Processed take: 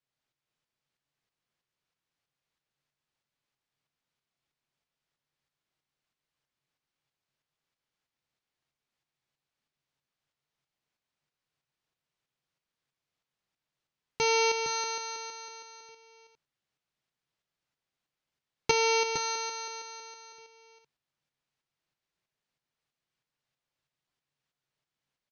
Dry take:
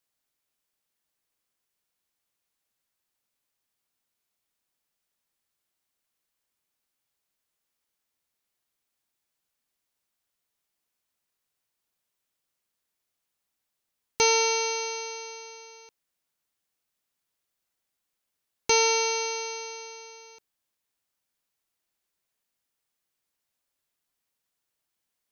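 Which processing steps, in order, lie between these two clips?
low-pass 4.8 kHz 12 dB/octave; peaking EQ 140 Hz +12.5 dB 0.32 oct; tremolo saw up 3.1 Hz, depth 55%; delay 462 ms -8 dB; trim +1 dB

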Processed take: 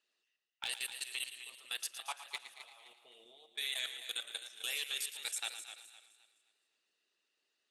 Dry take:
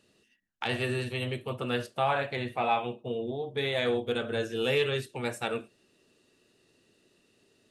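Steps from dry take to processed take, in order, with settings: level-controlled noise filter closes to 1.9 kHz, open at -26.5 dBFS; differentiator; band-stop 530 Hz, Q 12; harmonic-percussive split harmonic -11 dB; tone controls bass -9 dB, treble +8 dB; level held to a coarse grid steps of 23 dB; overload inside the chain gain 35 dB; thinning echo 113 ms, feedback 57%, high-pass 560 Hz, level -11 dB; on a send at -21.5 dB: reverberation RT60 0.75 s, pre-delay 5 ms; on the sum: modulated delay 258 ms, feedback 33%, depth 57 cents, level -11 dB; trim +8 dB

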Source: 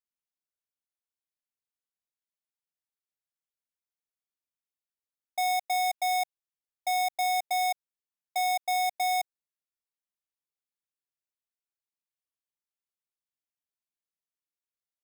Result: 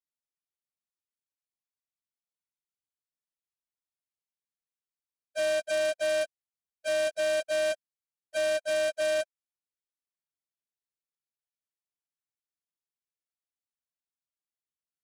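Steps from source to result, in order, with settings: frequency axis rescaled in octaves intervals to 84%; bass shelf 300 Hz +10.5 dB; waveshaping leveller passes 2; trim -5 dB

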